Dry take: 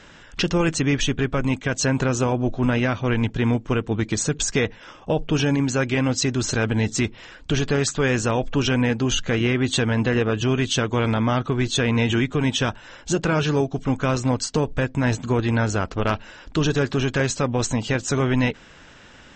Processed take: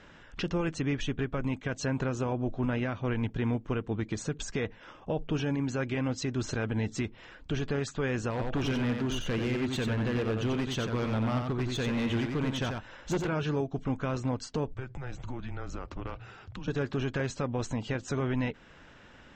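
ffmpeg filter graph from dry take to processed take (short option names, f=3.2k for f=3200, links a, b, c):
-filter_complex "[0:a]asettb=1/sr,asplit=3[a][b][c];[a]atrim=end=8.304[d];[b]atrim=start=8.3:end=13.29,asetpts=PTS-STARTPTS,afade=t=in:d=0.004:c=qsin,afade=t=out:st=4.986:d=0.004:c=qsin,aeval=exprs='0.15*(abs(mod(val(0)/0.15+3,4)-2)-1)':c=same,aecho=1:1:90:0.562,atrim=end_sample=220059[e];[c]atrim=start=13.286[f];[d][e]acrossfade=d=0.004:c1=hsin:c2=qsin[g];[g][f]acrossfade=d=0.004:c1=qsin:c2=hsin,asettb=1/sr,asplit=3[h][i][j];[h]atrim=end=14.744[k];[i]atrim=start=14.74:end=16.68,asetpts=PTS-STARTPTS,afade=t=in:d=0.004:c=qsin,afade=t=out:st=1.936:d=0.004:c=qsin,acompressor=threshold=-27dB:ratio=12:attack=3.2:release=140:knee=1:detection=peak,afreqshift=-130[l];[j]atrim=start=16.676[m];[k][l]acrossfade=d=0.004:c1=hsin:c2=qsin[n];[n][m]acrossfade=d=0.004:c1=qsin:c2=hsin,alimiter=limit=-16dB:level=0:latency=1:release=255,lowpass=f=2.5k:p=1,volume=-5.5dB"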